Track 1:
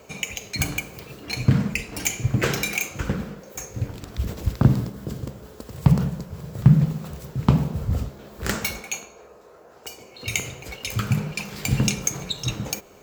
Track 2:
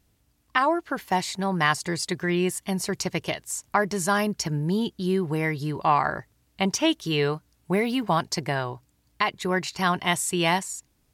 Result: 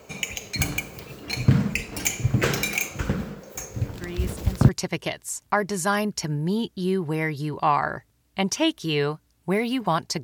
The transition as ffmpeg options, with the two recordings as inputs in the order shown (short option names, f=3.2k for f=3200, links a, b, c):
-filter_complex "[1:a]asplit=2[a][b];[0:a]apad=whole_dur=10.23,atrim=end=10.23,atrim=end=4.692[c];[b]atrim=start=2.908:end=8.45[d];[a]atrim=start=2.16:end=2.91,asetpts=PTS-STARTPTS,volume=-10.5dB,afade=t=in:d=0.004:c=hsin,afade=t=out:st=0.746:d=0.004:c=hsin,adelay=3940[e];[c][d]acrossfade=d=0.004:c1=hsin:c2=hsin[f];[f][e]amix=inputs=2:normalize=0"